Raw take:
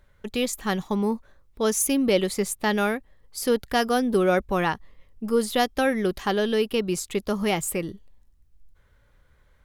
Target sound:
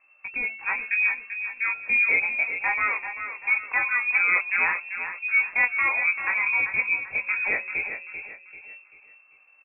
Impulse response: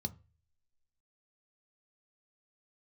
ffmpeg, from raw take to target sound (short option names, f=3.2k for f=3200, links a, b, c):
-filter_complex "[0:a]bandreject=f=165.3:t=h:w=4,bandreject=f=330.6:t=h:w=4,bandreject=f=495.9:t=h:w=4,bandreject=f=661.2:t=h:w=4,bandreject=f=826.5:t=h:w=4,bandreject=f=991.8:t=h:w=4,bandreject=f=1.1571k:t=h:w=4,bandreject=f=1.3224k:t=h:w=4,bandreject=f=1.4877k:t=h:w=4,bandreject=f=1.653k:t=h:w=4,bandreject=f=1.8183k:t=h:w=4,bandreject=f=1.9836k:t=h:w=4,bandreject=f=2.1489k:t=h:w=4,bandreject=f=2.3142k:t=h:w=4,bandreject=f=2.4795k:t=h:w=4,bandreject=f=2.6448k:t=h:w=4,bandreject=f=2.8101k:t=h:w=4,bandreject=f=2.9754k:t=h:w=4,bandreject=f=3.1407k:t=h:w=4,bandreject=f=3.306k:t=h:w=4,bandreject=f=3.4713k:t=h:w=4,bandreject=f=3.6366k:t=h:w=4,bandreject=f=3.8019k:t=h:w=4,bandreject=f=3.9672k:t=h:w=4,bandreject=f=4.1325k:t=h:w=4,bandreject=f=4.2978k:t=h:w=4,bandreject=f=4.4631k:t=h:w=4,bandreject=f=4.6284k:t=h:w=4,bandreject=f=4.7937k:t=h:w=4,bandreject=f=4.959k:t=h:w=4,bandreject=f=5.1243k:t=h:w=4,bandreject=f=5.2896k:t=h:w=4,bandreject=f=5.4549k:t=h:w=4,bandreject=f=5.6202k:t=h:w=4,bandreject=f=5.7855k:t=h:w=4,bandreject=f=5.9508k:t=h:w=4,bandreject=f=6.1161k:t=h:w=4,bandreject=f=6.2814k:t=h:w=4,flanger=delay=17:depth=5.4:speed=0.23,asplit=2[a][b];[b]aecho=0:1:390|780|1170|1560:0.355|0.135|0.0512|0.0195[c];[a][c]amix=inputs=2:normalize=0,lowpass=f=2.3k:t=q:w=0.5098,lowpass=f=2.3k:t=q:w=0.6013,lowpass=f=2.3k:t=q:w=0.9,lowpass=f=2.3k:t=q:w=2.563,afreqshift=-2700,volume=2dB"